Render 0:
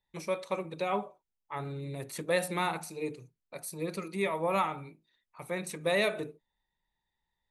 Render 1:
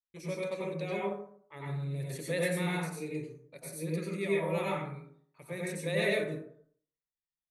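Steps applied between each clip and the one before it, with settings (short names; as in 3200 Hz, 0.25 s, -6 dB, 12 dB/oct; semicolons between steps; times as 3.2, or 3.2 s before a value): gate with hold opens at -56 dBFS; band shelf 970 Hz -9 dB 1.2 oct; plate-style reverb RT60 0.58 s, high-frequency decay 0.45×, pre-delay 80 ms, DRR -5 dB; gain -6 dB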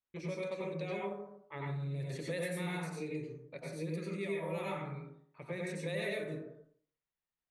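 low-pass opened by the level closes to 2700 Hz, open at -27 dBFS; compressor 3:1, threshold -42 dBFS, peak gain reduction 12.5 dB; gain +4 dB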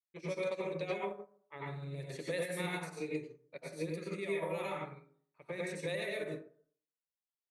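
tone controls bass -7 dB, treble +1 dB; limiter -33 dBFS, peak gain reduction 7 dB; upward expander 2.5:1, over -52 dBFS; gain +7 dB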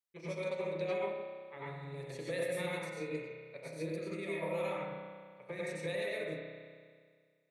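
spring tank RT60 1.9 s, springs 31 ms, chirp 35 ms, DRR 2 dB; gain -2 dB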